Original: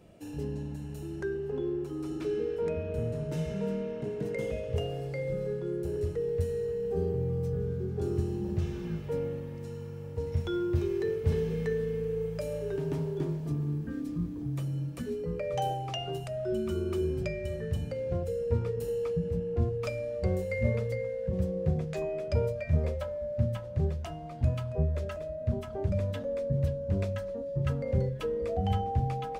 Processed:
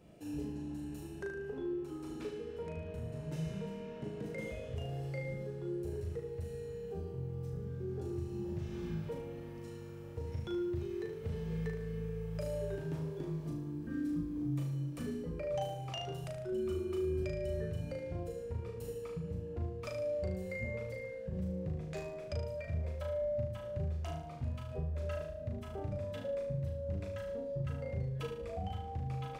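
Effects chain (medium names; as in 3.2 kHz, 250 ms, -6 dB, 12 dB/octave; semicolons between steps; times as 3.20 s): compression, threshold -32 dBFS, peak gain reduction 12 dB; flutter echo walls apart 6.4 m, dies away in 0.6 s; trim -4.5 dB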